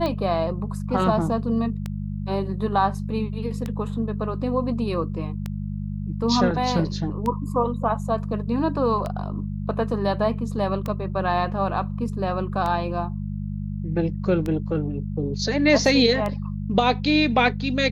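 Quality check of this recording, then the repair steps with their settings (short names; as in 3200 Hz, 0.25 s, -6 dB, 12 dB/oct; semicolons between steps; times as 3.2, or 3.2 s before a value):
hum 50 Hz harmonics 4 -29 dBFS
tick 33 1/3 rpm -15 dBFS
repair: de-click; de-hum 50 Hz, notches 4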